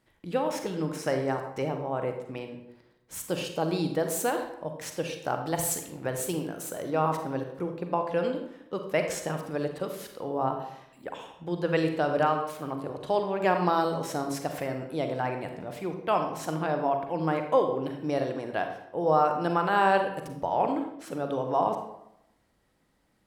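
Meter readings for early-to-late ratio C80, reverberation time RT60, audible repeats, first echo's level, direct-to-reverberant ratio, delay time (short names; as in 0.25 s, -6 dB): 9.0 dB, 0.80 s, none, none, 5.0 dB, none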